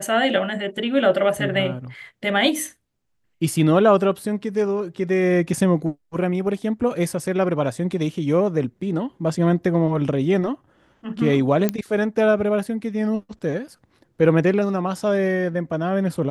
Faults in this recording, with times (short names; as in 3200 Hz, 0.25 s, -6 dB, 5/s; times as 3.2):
11.69 pop -7 dBFS